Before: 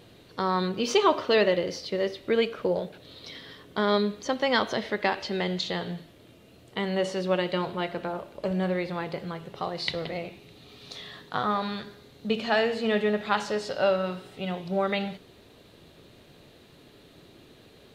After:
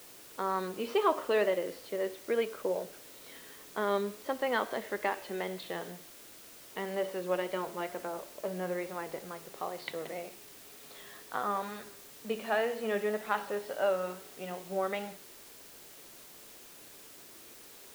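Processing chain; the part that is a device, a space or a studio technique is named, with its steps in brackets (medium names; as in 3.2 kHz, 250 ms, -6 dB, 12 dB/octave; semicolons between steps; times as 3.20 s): wax cylinder (band-pass 290–2200 Hz; wow and flutter; white noise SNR 17 dB); trim -5 dB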